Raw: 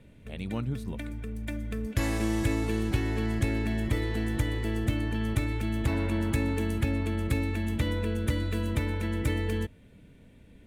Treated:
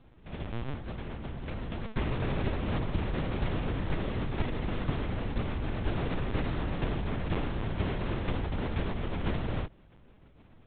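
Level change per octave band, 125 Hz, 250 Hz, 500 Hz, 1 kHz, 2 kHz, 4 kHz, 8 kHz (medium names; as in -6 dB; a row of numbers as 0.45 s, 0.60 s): -4.0 dB, -5.5 dB, -2.5 dB, +2.0 dB, -4.0 dB, -3.0 dB, under -35 dB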